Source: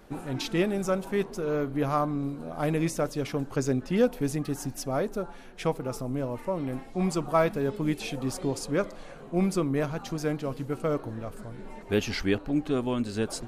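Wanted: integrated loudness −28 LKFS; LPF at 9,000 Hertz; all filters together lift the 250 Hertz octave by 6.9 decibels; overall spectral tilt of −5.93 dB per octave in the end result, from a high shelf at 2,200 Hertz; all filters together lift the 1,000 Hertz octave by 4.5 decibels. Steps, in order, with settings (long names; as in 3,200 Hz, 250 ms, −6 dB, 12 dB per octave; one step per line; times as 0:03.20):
low-pass filter 9,000 Hz
parametric band 250 Hz +8.5 dB
parametric band 1,000 Hz +4 dB
high-shelf EQ 2,200 Hz +6.5 dB
level −3.5 dB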